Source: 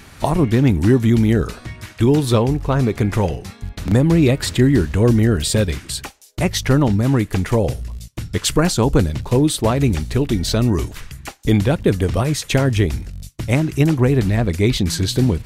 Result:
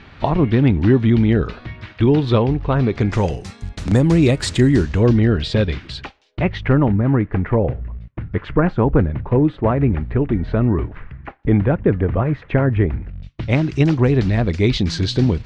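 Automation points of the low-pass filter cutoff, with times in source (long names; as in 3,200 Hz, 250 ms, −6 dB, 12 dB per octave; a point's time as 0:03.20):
low-pass filter 24 dB per octave
0:02.82 3,800 Hz
0:03.31 8,800 Hz
0:04.70 8,800 Hz
0:05.20 4,100 Hz
0:06.00 4,100 Hz
0:07.03 2,000 Hz
0:12.98 2,000 Hz
0:13.65 5,300 Hz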